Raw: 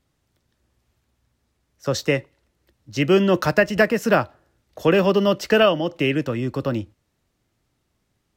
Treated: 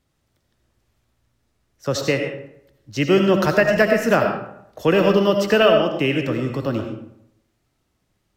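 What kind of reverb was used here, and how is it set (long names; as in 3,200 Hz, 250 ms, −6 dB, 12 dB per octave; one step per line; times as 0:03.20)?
comb and all-pass reverb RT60 0.75 s, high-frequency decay 0.6×, pre-delay 45 ms, DRR 4 dB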